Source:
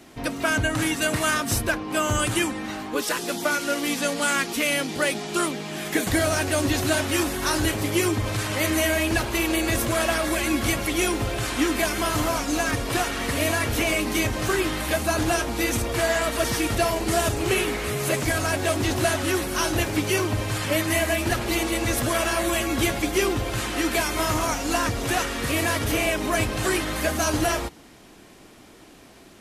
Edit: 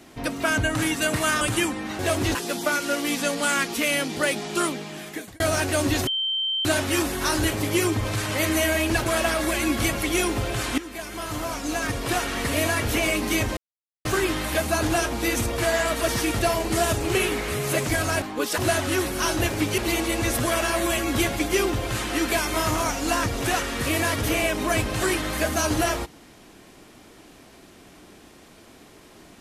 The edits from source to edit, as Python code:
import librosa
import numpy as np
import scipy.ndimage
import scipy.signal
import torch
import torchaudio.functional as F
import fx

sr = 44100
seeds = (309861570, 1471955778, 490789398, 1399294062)

y = fx.edit(x, sr, fx.cut(start_s=1.41, length_s=0.79),
    fx.swap(start_s=2.78, length_s=0.36, other_s=18.58, other_length_s=0.36),
    fx.fade_out_span(start_s=5.46, length_s=0.73),
    fx.insert_tone(at_s=6.86, length_s=0.58, hz=3120.0, db=-22.5),
    fx.cut(start_s=9.27, length_s=0.63),
    fx.fade_in_from(start_s=11.62, length_s=1.48, floor_db=-16.0),
    fx.insert_silence(at_s=14.41, length_s=0.48),
    fx.cut(start_s=20.14, length_s=1.27), tone=tone)